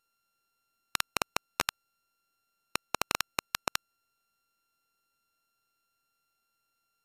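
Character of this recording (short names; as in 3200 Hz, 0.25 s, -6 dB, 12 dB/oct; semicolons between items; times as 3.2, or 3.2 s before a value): a buzz of ramps at a fixed pitch in blocks of 32 samples; MP2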